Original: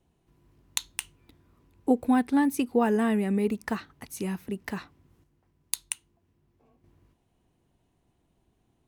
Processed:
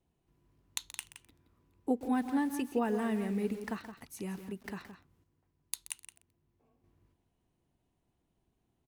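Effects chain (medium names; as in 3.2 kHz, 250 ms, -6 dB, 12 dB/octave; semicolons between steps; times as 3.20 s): echo from a far wall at 29 m, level -10 dB; bit-crushed delay 128 ms, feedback 35%, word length 6-bit, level -15 dB; trim -8 dB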